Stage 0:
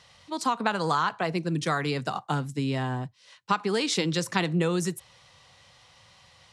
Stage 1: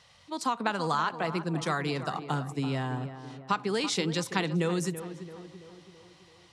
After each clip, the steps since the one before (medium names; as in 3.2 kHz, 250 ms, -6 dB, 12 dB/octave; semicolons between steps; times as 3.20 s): tape echo 333 ms, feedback 60%, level -10 dB, low-pass 1.6 kHz; trim -3 dB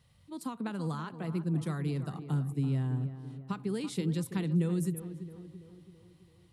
FFT filter 140 Hz 0 dB, 360 Hz -8 dB, 720 Hz -18 dB, 4 kHz -17 dB, 6 kHz -21 dB, 11 kHz -2 dB; trim +3.5 dB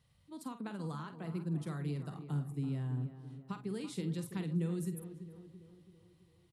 doubling 48 ms -10 dB; trim -6 dB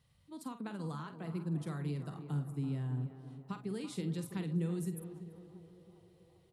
band-passed feedback delay 399 ms, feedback 82%, band-pass 660 Hz, level -16.5 dB